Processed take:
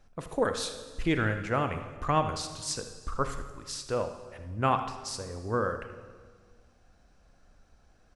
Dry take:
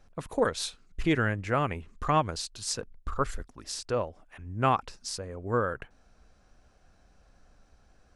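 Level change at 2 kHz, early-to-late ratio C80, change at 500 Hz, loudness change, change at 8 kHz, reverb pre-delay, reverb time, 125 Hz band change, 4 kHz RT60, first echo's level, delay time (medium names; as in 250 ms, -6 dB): -1.0 dB, 11.0 dB, -0.5 dB, -1.0 dB, -1.0 dB, 30 ms, 1.6 s, -1.0 dB, 1.4 s, -14.0 dB, 79 ms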